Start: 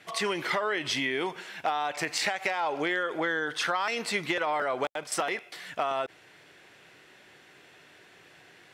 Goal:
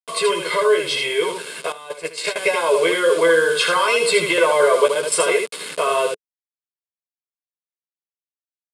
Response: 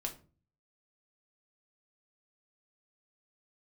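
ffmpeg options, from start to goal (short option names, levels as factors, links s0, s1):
-filter_complex "[0:a]acrossover=split=600|1900[s0][s1][s2];[s0]alimiter=level_in=2.37:limit=0.0631:level=0:latency=1:release=28,volume=0.422[s3];[s3][s1][s2]amix=inputs=3:normalize=0,aecho=1:1:1.9:0.96,asplit=2[s4][s5];[s5]aecho=0:1:12|80:0.668|0.596[s6];[s4][s6]amix=inputs=2:normalize=0,acrusher=bits=5:mix=0:aa=0.000001,highpass=f=160:w=0.5412,highpass=f=160:w=1.3066,equalizer=f=200:t=q:w=4:g=-3,equalizer=f=440:t=q:w=4:g=9,equalizer=f=760:t=q:w=4:g=-8,equalizer=f=1800:t=q:w=4:g=-9,equalizer=f=6000:t=q:w=4:g=-10,equalizer=f=9300:t=q:w=4:g=8,lowpass=f=10000:w=0.5412,lowpass=f=10000:w=1.3066,asettb=1/sr,asplit=3[s7][s8][s9];[s7]atrim=end=1.724[s10];[s8]atrim=start=1.72:end=2.36,asetpts=PTS-STARTPTS,afade=t=in:d=0.004:c=qsin,afade=t=out:st=0.636:d=0.004:c=qsin,agate=range=0.2:threshold=0.0562:ratio=16:detection=peak[s11];[s9]atrim=start=2.356[s12];[s10][s11]acrossfade=d=0.004:c1=hsin:c2=qsin[s13];[s13][s12]acrossfade=d=0.004:c1=qsin:c2=hsin,dynaudnorm=f=250:g=17:m=1.58,volume=1.58"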